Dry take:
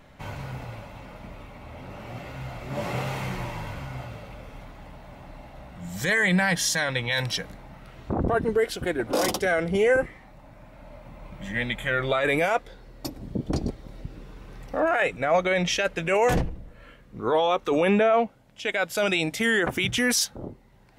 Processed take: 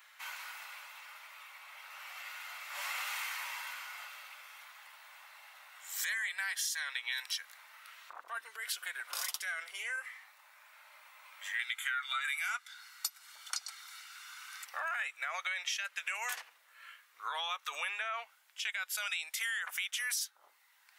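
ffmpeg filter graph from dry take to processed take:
-filter_complex "[0:a]asettb=1/sr,asplit=3[s0][s1][s2];[s0]atrim=end=7.614[s3];[s1]atrim=start=7.61:end=10.05,asetpts=PTS-STARTPTS,afade=t=in:d=0.004:c=qsin,afade=t=out:st=2.436:d=0.004:c=qsin,bandreject=f=800:w=12,acompressor=threshold=0.0501:ratio=5:attack=3.2:release=140:knee=1:detection=peak[s4];[s2]atrim=start=10.046[s5];[s3][s4]acrossfade=d=0.004:c1=hsin:c2=qsin[s6];[s6][s5]acrossfade=d=0.004:c1=qsin:c2=hsin,asettb=1/sr,asplit=3[s7][s8][s9];[s7]atrim=end=11.594[s10];[s8]atrim=start=11.59:end=14.65,asetpts=PTS-STARTPTS,afade=t=in:d=0.004:c=qsin,afade=t=out:st=3.056:d=0.004:c=qsin,highpass=f=1200:t=q:w=2,equalizer=f=7200:w=0.47:g=9,aecho=1:1:1.4:0.45,atrim=end_sample=134946[s11];[s9]atrim=start=14.646[s12];[s10][s11]acrossfade=d=0.004:c1=hsin:c2=qsin[s13];[s13][s12]acrossfade=d=0.004:c1=qsin:c2=hsin,highpass=f=1200:w=0.5412,highpass=f=1200:w=1.3066,highshelf=f=9700:g=11.5,acompressor=threshold=0.02:ratio=6"

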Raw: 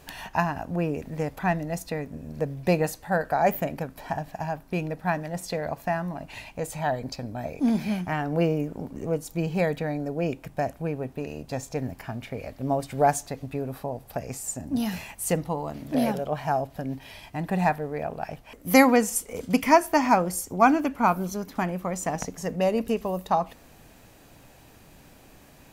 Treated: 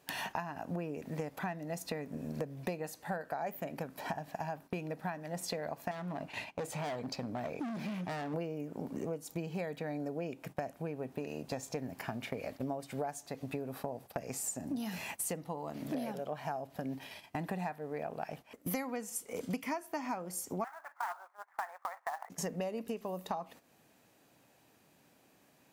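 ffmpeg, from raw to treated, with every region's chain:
-filter_complex "[0:a]asettb=1/sr,asplit=3[s0][s1][s2];[s0]atrim=end=5.914[s3];[s1]atrim=start=5.91:end=8.34,asetpts=PTS-STARTPTS,afade=t=in:d=0.004:c=qsin,afade=t=out:st=2.426:d=0.004:c=qsin,highshelf=f=5400:g=-8.5,asoftclip=type=hard:threshold=0.0316[s4];[s2]atrim=start=8.336[s5];[s3][s4]acrossfade=d=0.004:c1=hsin:c2=qsin[s6];[s6][s5]acrossfade=d=0.004:c1=qsin:c2=hsin,asettb=1/sr,asplit=3[s7][s8][s9];[s7]atrim=end=20.644[s10];[s8]atrim=start=20.64:end=22.3,asetpts=PTS-STARTPTS,afade=t=in:d=0.004:c=qsin,afade=t=out:st=1.656:d=0.004:c=qsin,aeval=exprs='0.133*(abs(mod(val(0)/0.133+3,4)-2)-1)':c=same,asuperpass=centerf=1200:order=8:qfactor=1,acrusher=bits=4:mode=log:mix=0:aa=0.000001[s11];[s9]atrim=start=22.296[s12];[s10][s11]acrossfade=d=0.004:c1=hsin:c2=qsin[s13];[s13][s12]acrossfade=d=0.004:c1=qsin:c2=hsin,highpass=160,agate=range=0.178:threshold=0.00708:ratio=16:detection=peak,acompressor=threshold=0.0141:ratio=12,volume=1.33"

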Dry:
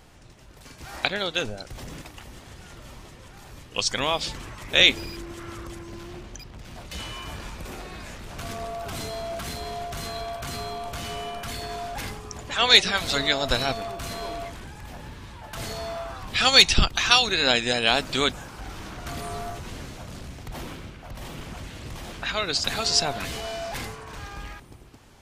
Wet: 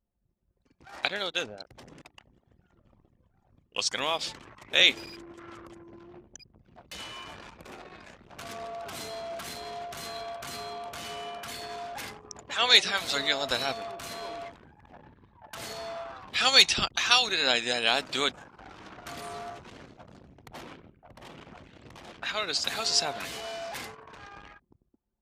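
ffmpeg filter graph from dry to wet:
-filter_complex "[0:a]asettb=1/sr,asplit=3[s0][s1][s2];[s0]atrim=end=2.824[s3];[s1]atrim=start=2.82:end=3.55,asetpts=PTS-STARTPTS,afade=t=in:d=0.004:c=qsin,afade=t=out:st=0.726:d=0.004:c=qsin,lowshelf=f=85:g=5.5,afreqshift=-20[s4];[s2]atrim=start=3.546[s5];[s3][s4]acrossfade=d=0.004:c1=hsin:c2=qsin[s6];[s6][s5]acrossfade=d=0.004:c1=qsin:c2=hsin,anlmdn=1,highpass=f=360:p=1,volume=0.668"

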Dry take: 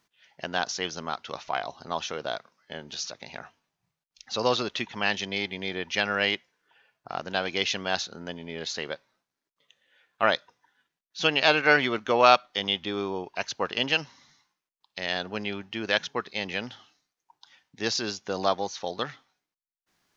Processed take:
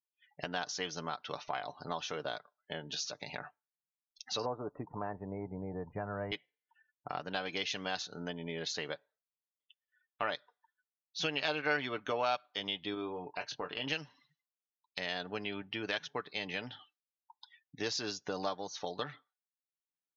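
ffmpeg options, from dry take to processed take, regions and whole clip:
-filter_complex "[0:a]asettb=1/sr,asplit=3[s0][s1][s2];[s0]atrim=end=4.454[s3];[s1]atrim=start=4.45:end=6.32,asetpts=PTS-STARTPTS,afade=t=in:d=0.004:c=qsin,afade=t=out:st=1.866:d=0.004:c=qsin,asubboost=boost=11.5:cutoff=110,lowpass=f=1100:w=0.5412,lowpass=f=1100:w=1.3066[s4];[s2]atrim=start=6.316[s5];[s3][s4]acrossfade=d=0.004:c1=hsin:c2=qsin[s6];[s6][s5]acrossfade=d=0.004:c1=qsin:c2=hsin,asettb=1/sr,asplit=3[s7][s8][s9];[s7]atrim=end=12.944[s10];[s8]atrim=start=12.94:end=13.87,asetpts=PTS-STARTPTS,afade=t=in:d=0.004:c=qsin,afade=t=out:st=0.926:d=0.004:c=qsin,lowpass=5000,acompressor=threshold=0.0112:ratio=1.5:attack=3.2:release=140:knee=1:detection=peak,asplit=2[s11][s12];[s12]adelay=23,volume=0.398[s13];[s11][s13]amix=inputs=2:normalize=0,atrim=end_sample=41013[s14];[s9]atrim=start=13.866[s15];[s10][s14]acrossfade=d=0.004:c1=hsin:c2=qsin[s16];[s16][s15]acrossfade=d=0.004:c1=qsin:c2=hsin,afftdn=nr=35:nf=-51,acompressor=threshold=0.0126:ratio=2.5,aecho=1:1:6.8:0.45"

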